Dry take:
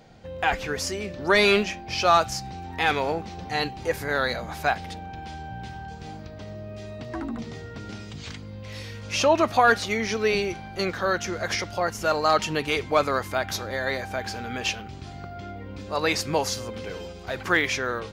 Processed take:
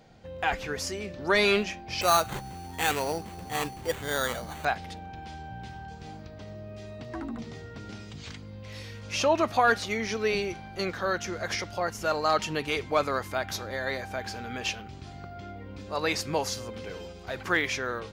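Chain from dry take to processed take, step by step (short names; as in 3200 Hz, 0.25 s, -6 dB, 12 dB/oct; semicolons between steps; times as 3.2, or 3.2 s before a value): 2.01–4.65 sample-rate reducer 5200 Hz, jitter 0%; gain -4 dB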